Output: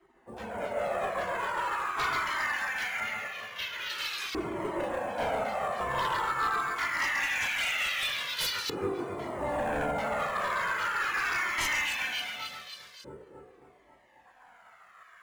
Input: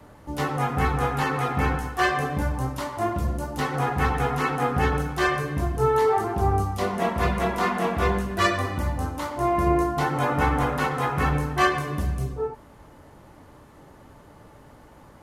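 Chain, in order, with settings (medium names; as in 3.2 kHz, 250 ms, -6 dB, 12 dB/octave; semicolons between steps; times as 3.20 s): 12.91–14.26 s: time-frequency box 530–1600 Hz -28 dB; high-pass 150 Hz 6 dB/octave; spectral gate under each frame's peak -15 dB weak; tone controls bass +9 dB, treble -1 dB; on a send: echo whose repeats swap between lows and highs 136 ms, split 2.2 kHz, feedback 75%, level -2 dB; on the sum: LFO band-pass saw up 0.23 Hz 360–4800 Hz; sine folder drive 12 dB, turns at -23 dBFS; 3.00–3.90 s: distance through air 170 m; in parallel at -11 dB: sample-rate reducer 8.7 kHz, jitter 0%; on the sum: Shepard-style flanger falling 0.43 Hz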